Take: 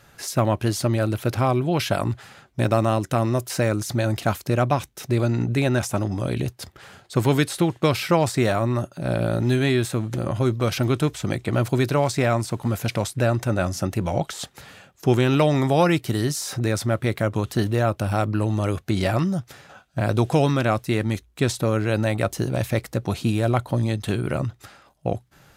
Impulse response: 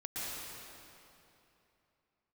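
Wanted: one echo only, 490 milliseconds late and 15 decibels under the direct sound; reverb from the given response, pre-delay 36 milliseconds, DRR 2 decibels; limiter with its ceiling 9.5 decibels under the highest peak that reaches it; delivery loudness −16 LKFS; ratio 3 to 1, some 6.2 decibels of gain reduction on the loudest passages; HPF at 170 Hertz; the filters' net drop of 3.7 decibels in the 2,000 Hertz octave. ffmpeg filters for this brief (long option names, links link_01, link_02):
-filter_complex "[0:a]highpass=170,equalizer=frequency=2000:width_type=o:gain=-5,acompressor=threshold=-23dB:ratio=3,alimiter=limit=-19dB:level=0:latency=1,aecho=1:1:490:0.178,asplit=2[link_01][link_02];[1:a]atrim=start_sample=2205,adelay=36[link_03];[link_02][link_03]afir=irnorm=-1:irlink=0,volume=-5dB[link_04];[link_01][link_04]amix=inputs=2:normalize=0,volume=13dB"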